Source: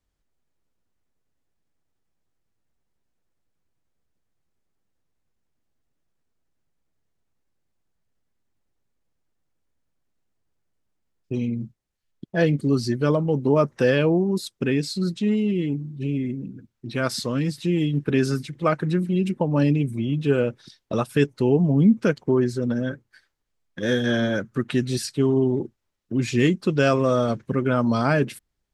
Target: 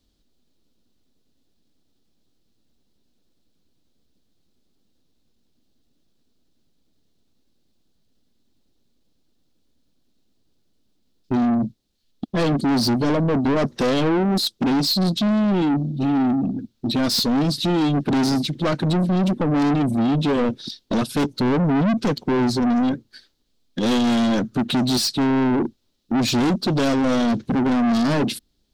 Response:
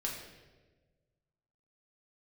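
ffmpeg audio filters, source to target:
-af "aeval=exprs='0.501*sin(PI/2*1.78*val(0)/0.501)':channel_layout=same,equalizer=frequency=125:width_type=o:width=1:gain=-3,equalizer=frequency=250:width_type=o:width=1:gain=9,equalizer=frequency=1000:width_type=o:width=1:gain=-5,equalizer=frequency=2000:width_type=o:width=1:gain=-8,equalizer=frequency=4000:width_type=o:width=1:gain=11,equalizer=frequency=8000:width_type=o:width=1:gain=-3,aeval=exprs='(tanh(7.08*val(0)+0.05)-tanh(0.05))/7.08':channel_layout=same"

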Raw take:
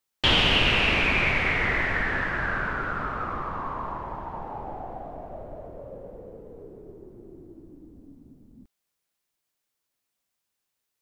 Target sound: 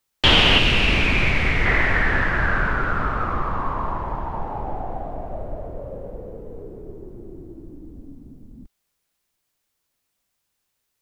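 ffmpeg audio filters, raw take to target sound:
ffmpeg -i in.wav -filter_complex "[0:a]lowshelf=frequency=89:gain=9,acrossover=split=180[link_01][link_02];[link_01]alimiter=limit=-20.5dB:level=0:latency=1[link_03];[link_03][link_02]amix=inputs=2:normalize=0,asettb=1/sr,asplit=3[link_04][link_05][link_06];[link_04]atrim=end=0.584[link_07];[link_05]atrim=start=0.58:end=1.66,asetpts=PTS-STARTPTS,afade=type=in:duration=0.004:curve=qsin,afade=type=out:start_time=1.076:duration=0.004:curve=qsin,acrossover=split=370|3000[link_08][link_09][link_10];[link_09]acompressor=threshold=-39dB:ratio=1.5[link_11];[link_08][link_11][link_10]amix=inputs=3:normalize=0[link_12];[link_06]atrim=start=1.656[link_13];[link_07][link_12]acrossfade=duration=0.004:curve1=hsin:curve2=qsin[link_14];[link_14][link_13]acrossfade=duration=0.004:curve1=qsin:curve2=hsin,volume=5.5dB" out.wav

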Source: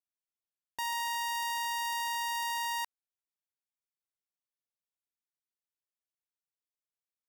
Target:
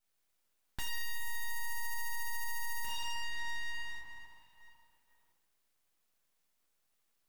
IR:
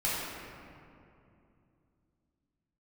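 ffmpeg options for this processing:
-filter_complex "[1:a]atrim=start_sample=2205[link_01];[0:a][link_01]afir=irnorm=-1:irlink=0,acompressor=threshold=-44dB:ratio=4,equalizer=frequency=4300:width_type=o:width=1.8:gain=-7,aeval=exprs='0.0224*(cos(1*acos(clip(val(0)/0.0224,-1,1)))-cos(1*PI/2))+0.00631*(cos(5*acos(clip(val(0)/0.0224,-1,1)))-cos(5*PI/2))':channel_layout=same,aeval=exprs='abs(val(0))':channel_layout=same,volume=6dB"

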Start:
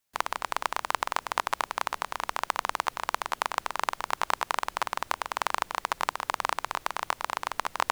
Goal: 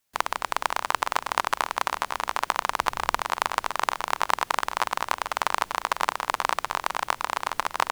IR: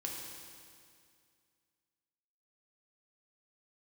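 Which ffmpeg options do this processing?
-filter_complex "[0:a]asettb=1/sr,asplit=3[link_01][link_02][link_03];[link_01]atrim=end=2.794[link_04];[link_02]atrim=start=2.79:end=3.21,asetpts=PTS-STARTPTS,afade=type=in:duration=0.004:curve=qsin,afade=type=out:start_time=0.416:duration=0.004:curve=qsin,lowshelf=frequency=190:gain=10.5[link_05];[link_03]atrim=start=3.206[link_06];[link_04][link_05]acrossfade=duration=0.004:curve1=hsin:curve2=qsin[link_07];[link_07][link_06]acrossfade=duration=0.004:curve1=qsin:curve2=hsin,aecho=1:1:499:0.316,volume=3.5dB"

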